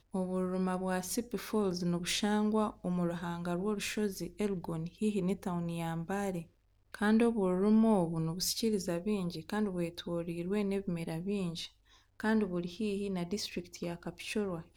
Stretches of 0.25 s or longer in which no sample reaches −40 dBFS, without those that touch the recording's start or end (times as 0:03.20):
0:06.42–0:06.94
0:11.66–0:12.20